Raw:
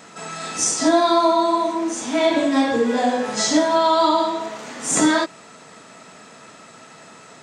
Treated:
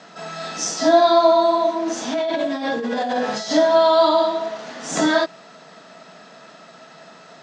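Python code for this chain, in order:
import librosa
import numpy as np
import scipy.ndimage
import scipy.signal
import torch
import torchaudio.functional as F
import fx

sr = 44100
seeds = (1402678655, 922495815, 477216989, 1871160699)

y = fx.high_shelf(x, sr, hz=3200.0, db=7.0)
y = fx.over_compress(y, sr, threshold_db=-22.0, ratio=-1.0, at=(1.86, 3.51))
y = fx.cabinet(y, sr, low_hz=140.0, low_slope=24, high_hz=5300.0, hz=(170.0, 660.0, 1600.0, 2300.0), db=(5, 8, 3, -4))
y = F.gain(torch.from_numpy(y), -3.0).numpy()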